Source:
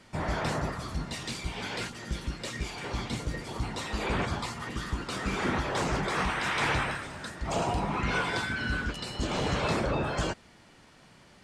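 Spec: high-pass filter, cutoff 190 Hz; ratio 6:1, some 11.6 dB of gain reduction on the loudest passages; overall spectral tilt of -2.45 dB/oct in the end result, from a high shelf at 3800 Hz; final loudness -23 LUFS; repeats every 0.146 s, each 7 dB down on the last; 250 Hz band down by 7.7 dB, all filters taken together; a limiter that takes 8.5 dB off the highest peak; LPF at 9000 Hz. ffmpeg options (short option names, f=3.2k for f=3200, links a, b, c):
-af "highpass=190,lowpass=9k,equalizer=f=250:t=o:g=-8.5,highshelf=f=3.8k:g=4.5,acompressor=threshold=-38dB:ratio=6,alimiter=level_in=9.5dB:limit=-24dB:level=0:latency=1,volume=-9.5dB,aecho=1:1:146|292|438|584|730:0.447|0.201|0.0905|0.0407|0.0183,volume=18dB"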